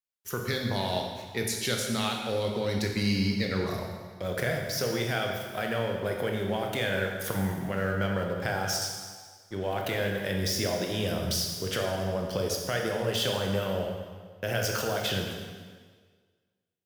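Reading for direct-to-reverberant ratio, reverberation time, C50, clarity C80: 1.0 dB, 1.6 s, 3.0 dB, 4.5 dB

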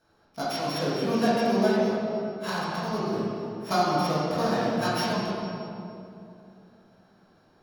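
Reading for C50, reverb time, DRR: −3.5 dB, 2.8 s, −11.0 dB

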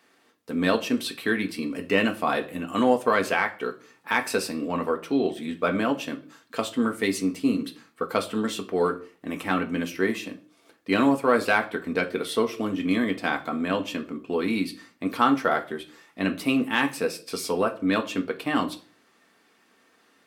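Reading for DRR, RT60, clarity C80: 3.5 dB, 0.45 s, 21.0 dB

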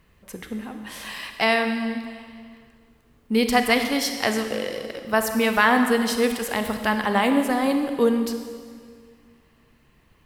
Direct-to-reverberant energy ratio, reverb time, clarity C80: 6.0 dB, 1.9 s, 7.5 dB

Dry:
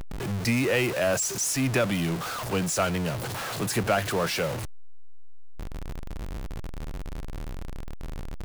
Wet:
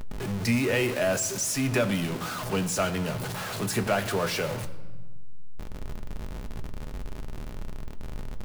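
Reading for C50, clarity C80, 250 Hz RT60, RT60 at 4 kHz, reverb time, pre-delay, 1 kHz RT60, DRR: 14.0 dB, 15.0 dB, 1.9 s, 1.0 s, 1.3 s, 5 ms, 1.3 s, 6.5 dB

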